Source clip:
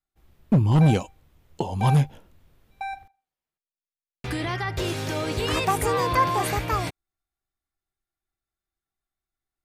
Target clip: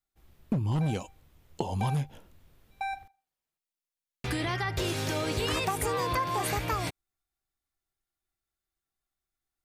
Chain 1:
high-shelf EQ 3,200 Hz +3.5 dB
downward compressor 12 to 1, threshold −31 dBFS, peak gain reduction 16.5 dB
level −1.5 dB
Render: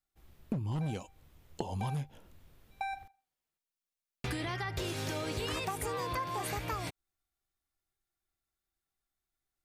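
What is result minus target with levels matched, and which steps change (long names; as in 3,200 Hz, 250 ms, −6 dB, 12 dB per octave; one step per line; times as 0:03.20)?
downward compressor: peak gain reduction +6.5 dB
change: downward compressor 12 to 1, threshold −24 dBFS, peak gain reduction 10 dB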